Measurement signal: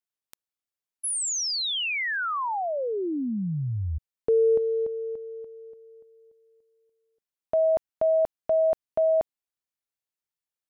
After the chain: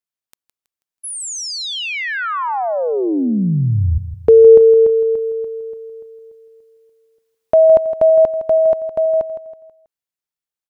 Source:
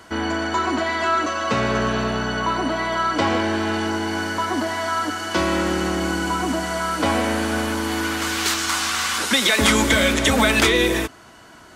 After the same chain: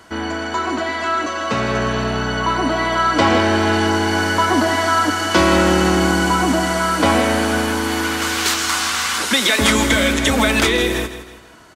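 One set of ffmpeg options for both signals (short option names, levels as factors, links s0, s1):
-af "dynaudnorm=f=270:g=21:m=6.31,aecho=1:1:162|324|486|648:0.251|0.1|0.0402|0.0161"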